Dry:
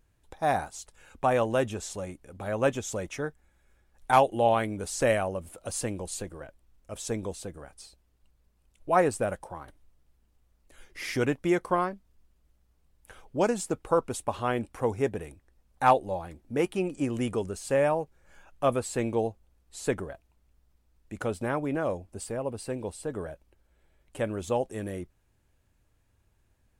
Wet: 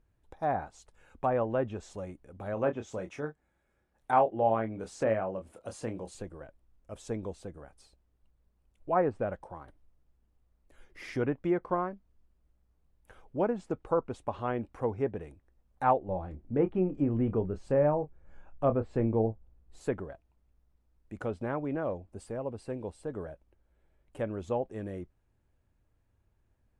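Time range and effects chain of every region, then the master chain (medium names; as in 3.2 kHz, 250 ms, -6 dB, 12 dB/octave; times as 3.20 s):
2.54–6.15 s: high-pass 120 Hz 6 dB/octave + doubling 27 ms -8 dB
16.08–19.81 s: tilt EQ -2 dB/octave + doubling 27 ms -10.5 dB
whole clip: low-pass that closes with the level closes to 1.9 kHz, closed at -21 dBFS; treble shelf 2.4 kHz -11.5 dB; trim -3 dB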